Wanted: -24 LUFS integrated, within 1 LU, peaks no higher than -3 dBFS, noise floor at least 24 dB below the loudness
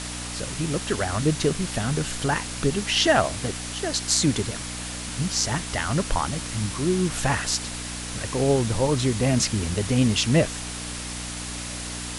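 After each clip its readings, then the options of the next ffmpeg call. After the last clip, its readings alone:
hum 60 Hz; highest harmonic 300 Hz; hum level -35 dBFS; noise floor -33 dBFS; noise floor target -49 dBFS; loudness -24.5 LUFS; peak level -4.5 dBFS; loudness target -24.0 LUFS
-> -af "bandreject=f=60:t=h:w=4,bandreject=f=120:t=h:w=4,bandreject=f=180:t=h:w=4,bandreject=f=240:t=h:w=4,bandreject=f=300:t=h:w=4"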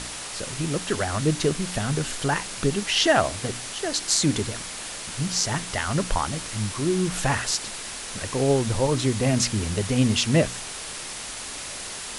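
hum not found; noise floor -35 dBFS; noise floor target -49 dBFS
-> -af "afftdn=nr=14:nf=-35"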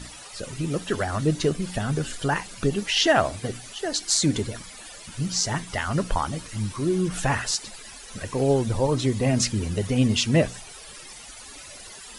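noise floor -43 dBFS; noise floor target -49 dBFS
-> -af "afftdn=nr=6:nf=-43"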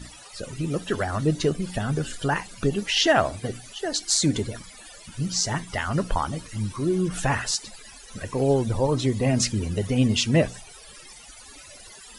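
noise floor -46 dBFS; noise floor target -49 dBFS
-> -af "afftdn=nr=6:nf=-46"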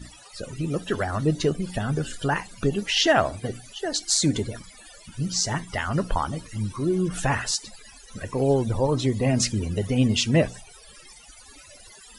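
noise floor -49 dBFS; loudness -25.0 LUFS; peak level -4.5 dBFS; loudness target -24.0 LUFS
-> -af "volume=1.12"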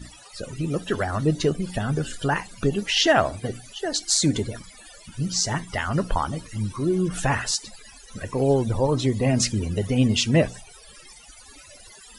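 loudness -24.0 LUFS; peak level -3.5 dBFS; noise floor -48 dBFS

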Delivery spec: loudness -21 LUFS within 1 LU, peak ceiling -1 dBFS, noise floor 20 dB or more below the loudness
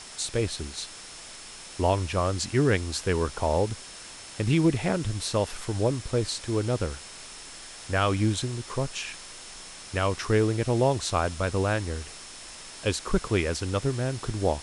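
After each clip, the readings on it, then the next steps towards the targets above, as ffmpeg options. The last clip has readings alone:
steady tone 5.3 kHz; tone level -50 dBFS; noise floor -44 dBFS; noise floor target -48 dBFS; loudness -27.5 LUFS; peak level -10.0 dBFS; loudness target -21.0 LUFS
-> -af "bandreject=f=5300:w=30"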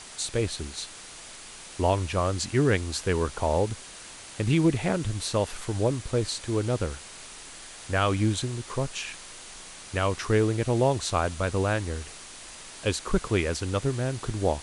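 steady tone not found; noise floor -44 dBFS; noise floor target -48 dBFS
-> -af "afftdn=nr=6:nf=-44"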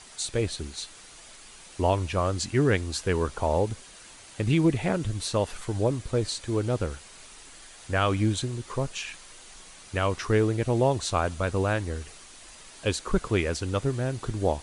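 noise floor -49 dBFS; loudness -27.5 LUFS; peak level -10.5 dBFS; loudness target -21.0 LUFS
-> -af "volume=2.11"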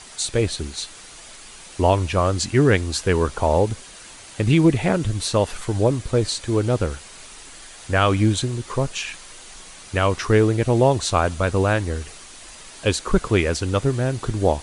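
loudness -21.0 LUFS; peak level -4.0 dBFS; noise floor -42 dBFS

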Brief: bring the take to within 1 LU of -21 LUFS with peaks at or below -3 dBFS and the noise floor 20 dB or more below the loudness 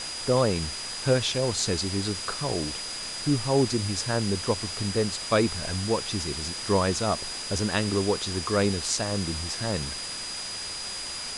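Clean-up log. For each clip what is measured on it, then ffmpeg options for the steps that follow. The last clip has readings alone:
steady tone 4.9 kHz; tone level -35 dBFS; noise floor -35 dBFS; noise floor target -47 dBFS; loudness -27.0 LUFS; peak level -9.0 dBFS; loudness target -21.0 LUFS
-> -af "bandreject=f=4900:w=30"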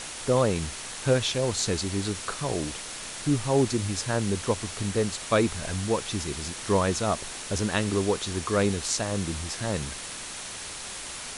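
steady tone not found; noise floor -38 dBFS; noise floor target -48 dBFS
-> -af "afftdn=nr=10:nf=-38"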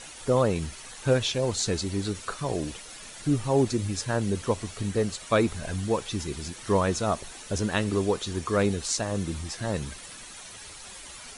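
noise floor -44 dBFS; noise floor target -48 dBFS
-> -af "afftdn=nr=6:nf=-44"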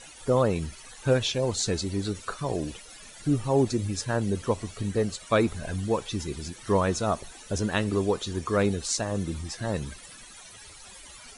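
noise floor -48 dBFS; loudness -28.0 LUFS; peak level -10.5 dBFS; loudness target -21.0 LUFS
-> -af "volume=2.24"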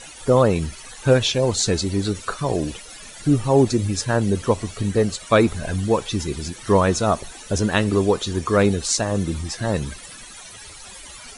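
loudness -21.0 LUFS; peak level -3.5 dBFS; noise floor -41 dBFS

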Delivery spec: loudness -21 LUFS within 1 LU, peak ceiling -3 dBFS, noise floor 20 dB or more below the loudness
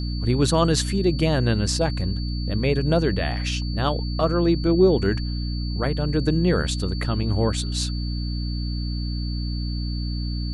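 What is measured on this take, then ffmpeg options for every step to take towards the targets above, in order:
hum 60 Hz; highest harmonic 300 Hz; hum level -24 dBFS; steady tone 4.5 kHz; tone level -37 dBFS; loudness -23.5 LUFS; peak level -6.5 dBFS; loudness target -21.0 LUFS
-> -af "bandreject=f=60:t=h:w=6,bandreject=f=120:t=h:w=6,bandreject=f=180:t=h:w=6,bandreject=f=240:t=h:w=6,bandreject=f=300:t=h:w=6"
-af "bandreject=f=4500:w=30"
-af "volume=1.33"

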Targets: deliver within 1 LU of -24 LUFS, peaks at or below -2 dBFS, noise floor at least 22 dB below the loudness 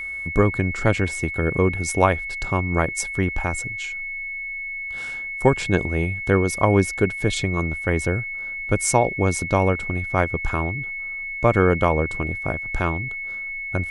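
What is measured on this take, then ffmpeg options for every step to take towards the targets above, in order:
steady tone 2.2 kHz; tone level -28 dBFS; loudness -22.5 LUFS; peak level -2.0 dBFS; loudness target -24.0 LUFS
-> -af "bandreject=f=2200:w=30"
-af "volume=0.841"

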